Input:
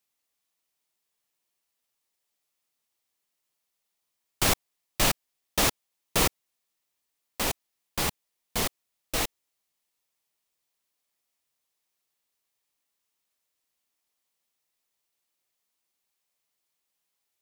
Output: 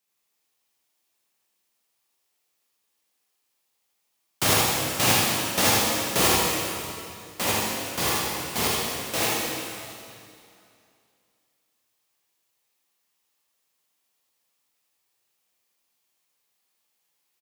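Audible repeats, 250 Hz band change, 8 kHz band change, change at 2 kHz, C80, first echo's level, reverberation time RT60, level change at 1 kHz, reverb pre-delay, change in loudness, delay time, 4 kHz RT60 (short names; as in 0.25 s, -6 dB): 1, +6.0 dB, +6.0 dB, +6.5 dB, -0.5 dB, -2.0 dB, 2.5 s, +7.0 dB, 7 ms, +5.0 dB, 79 ms, 2.4 s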